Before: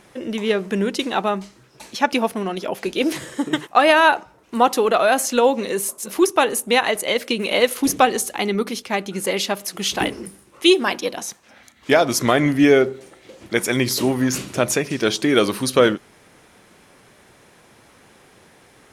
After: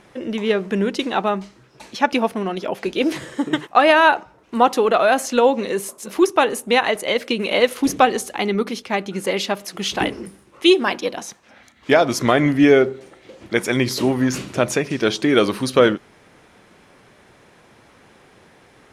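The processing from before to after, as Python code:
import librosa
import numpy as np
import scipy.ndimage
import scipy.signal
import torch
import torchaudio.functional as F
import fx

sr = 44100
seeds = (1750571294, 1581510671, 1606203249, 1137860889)

y = fx.high_shelf(x, sr, hz=7100.0, db=-11.5)
y = y * 10.0 ** (1.0 / 20.0)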